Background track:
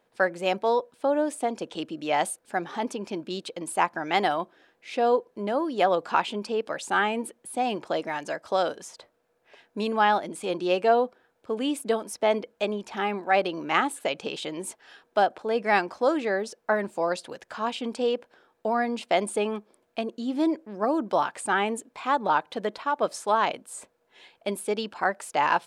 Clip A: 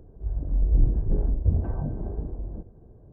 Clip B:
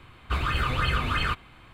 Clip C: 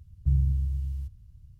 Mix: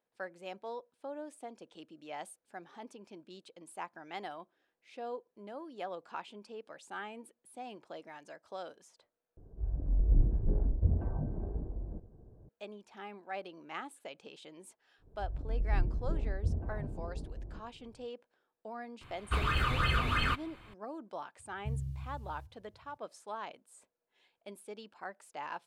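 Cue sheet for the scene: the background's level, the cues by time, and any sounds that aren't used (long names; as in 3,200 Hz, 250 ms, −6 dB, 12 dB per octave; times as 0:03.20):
background track −18.5 dB
0:09.37: overwrite with A −6 dB
0:14.98: mix in A −10 dB, fades 0.10 s
0:19.01: mix in B −4 dB
0:21.39: mix in C −7.5 dB + high-pass filter 110 Hz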